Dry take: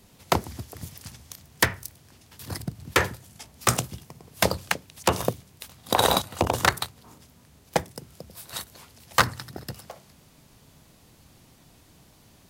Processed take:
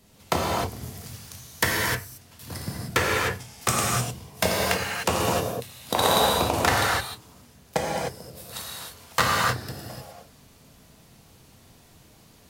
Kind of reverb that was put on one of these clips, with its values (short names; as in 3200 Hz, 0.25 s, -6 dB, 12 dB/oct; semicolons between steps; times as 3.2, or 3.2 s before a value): non-linear reverb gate 0.33 s flat, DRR -4.5 dB; gain -3.5 dB